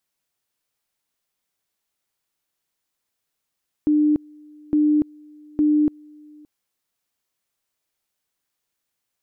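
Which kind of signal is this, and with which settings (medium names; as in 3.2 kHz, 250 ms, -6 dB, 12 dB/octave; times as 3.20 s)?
two-level tone 300 Hz -14 dBFS, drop 28.5 dB, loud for 0.29 s, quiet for 0.57 s, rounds 3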